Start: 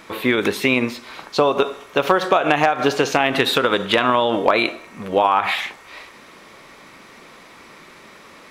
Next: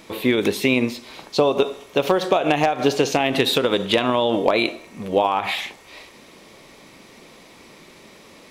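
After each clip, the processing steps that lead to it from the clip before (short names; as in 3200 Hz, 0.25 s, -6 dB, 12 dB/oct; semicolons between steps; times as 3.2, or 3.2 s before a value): bell 1400 Hz -10.5 dB 1.2 oct; gain +1 dB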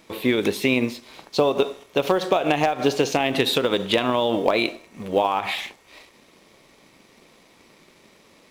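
G.711 law mismatch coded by A; gain -1.5 dB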